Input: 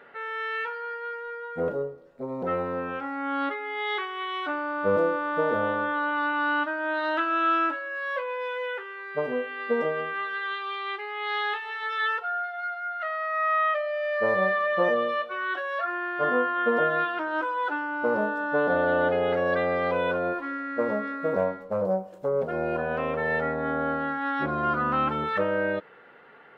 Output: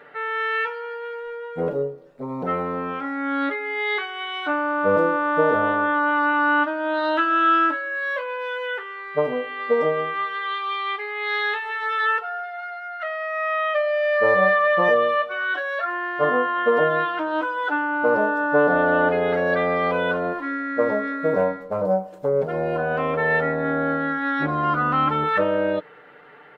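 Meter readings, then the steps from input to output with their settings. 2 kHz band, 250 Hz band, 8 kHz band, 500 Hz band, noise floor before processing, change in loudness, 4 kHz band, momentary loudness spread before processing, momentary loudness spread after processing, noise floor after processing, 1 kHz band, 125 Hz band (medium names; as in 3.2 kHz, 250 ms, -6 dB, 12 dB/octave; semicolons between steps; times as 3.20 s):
+5.5 dB, +5.5 dB, no reading, +5.0 dB, -45 dBFS, +5.0 dB, +4.5 dB, 8 LU, 10 LU, -39 dBFS, +5.0 dB, +6.0 dB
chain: comb 6.7 ms, depth 54%; trim +3.5 dB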